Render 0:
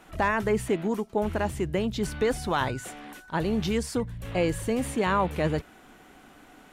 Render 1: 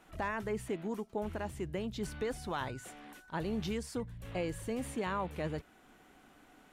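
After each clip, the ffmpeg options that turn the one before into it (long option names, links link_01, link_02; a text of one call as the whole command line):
ffmpeg -i in.wav -af "alimiter=limit=-17.5dB:level=0:latency=1:release=418,volume=-8.5dB" out.wav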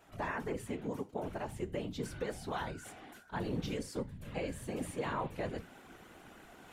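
ffmpeg -i in.wav -af "areverse,acompressor=mode=upward:threshold=-45dB:ratio=2.5,areverse,flanger=delay=9.5:depth=8.5:regen=-71:speed=0.36:shape=triangular,afftfilt=real='hypot(re,im)*cos(2*PI*random(0))':imag='hypot(re,im)*sin(2*PI*random(1))':win_size=512:overlap=0.75,volume=9dB" out.wav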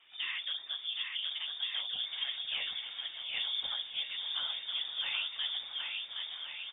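ffmpeg -i in.wav -af "aecho=1:1:770|1424|1981|2454|2856:0.631|0.398|0.251|0.158|0.1,lowpass=frequency=3100:width_type=q:width=0.5098,lowpass=frequency=3100:width_type=q:width=0.6013,lowpass=frequency=3100:width_type=q:width=0.9,lowpass=frequency=3100:width_type=q:width=2.563,afreqshift=-3700" out.wav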